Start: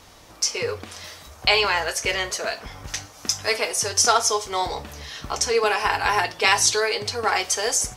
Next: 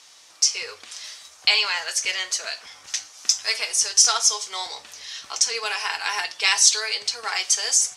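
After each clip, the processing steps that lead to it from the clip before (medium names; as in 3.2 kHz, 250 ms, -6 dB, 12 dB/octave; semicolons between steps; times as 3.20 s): frequency weighting ITU-R 468; trim -8 dB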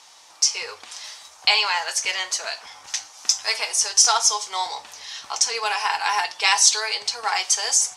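peaking EQ 870 Hz +10 dB 0.69 oct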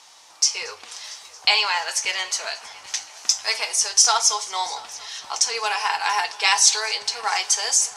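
multi-head delay 228 ms, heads first and third, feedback 56%, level -23 dB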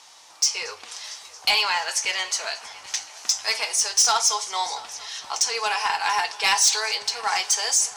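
saturation -11 dBFS, distortion -15 dB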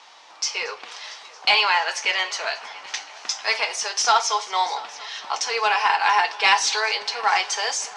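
band-pass 250–3400 Hz; trim +5 dB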